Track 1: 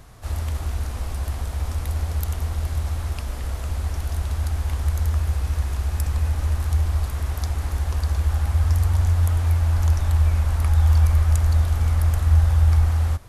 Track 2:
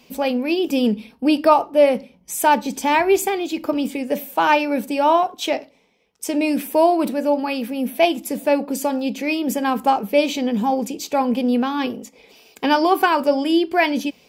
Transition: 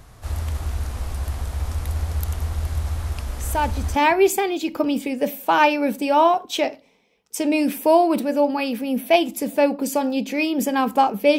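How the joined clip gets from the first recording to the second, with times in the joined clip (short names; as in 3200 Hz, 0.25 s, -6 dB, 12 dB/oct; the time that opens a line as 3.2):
track 1
3.23 add track 2 from 2.12 s 0.73 s -7 dB
3.96 switch to track 2 from 2.85 s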